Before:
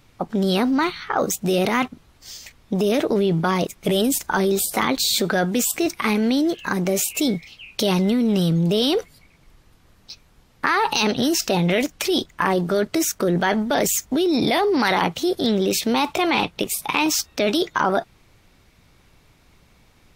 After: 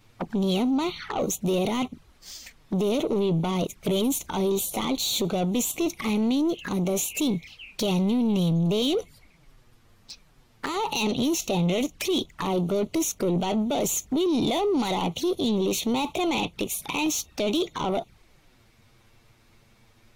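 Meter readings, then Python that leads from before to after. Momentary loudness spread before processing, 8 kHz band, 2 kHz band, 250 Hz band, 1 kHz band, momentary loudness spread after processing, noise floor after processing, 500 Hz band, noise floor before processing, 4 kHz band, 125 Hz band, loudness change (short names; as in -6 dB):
5 LU, -4.5 dB, -11.0 dB, -3.5 dB, -8.0 dB, 7 LU, -59 dBFS, -5.0 dB, -56 dBFS, -5.5 dB, -3.0 dB, -5.0 dB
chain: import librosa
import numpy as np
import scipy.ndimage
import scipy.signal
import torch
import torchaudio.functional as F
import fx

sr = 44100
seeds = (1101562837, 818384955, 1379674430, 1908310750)

y = 10.0 ** (-19.0 / 20.0) * np.tanh(x / 10.0 ** (-19.0 / 20.0))
y = fx.env_flanger(y, sr, rest_ms=10.5, full_db=-25.0)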